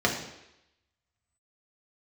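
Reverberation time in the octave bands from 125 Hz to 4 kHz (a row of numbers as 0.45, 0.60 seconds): 0.70, 0.80, 0.85, 0.85, 0.90, 0.90 seconds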